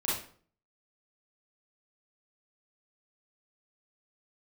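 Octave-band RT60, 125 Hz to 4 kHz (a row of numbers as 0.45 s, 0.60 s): 0.60 s, 0.55 s, 0.50 s, 0.45 s, 0.40 s, 0.35 s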